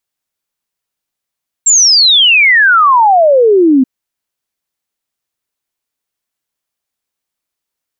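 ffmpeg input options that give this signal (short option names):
-f lavfi -i "aevalsrc='0.631*clip(min(t,2.18-t)/0.01,0,1)*sin(2*PI*7600*2.18/log(250/7600)*(exp(log(250/7600)*t/2.18)-1))':d=2.18:s=44100"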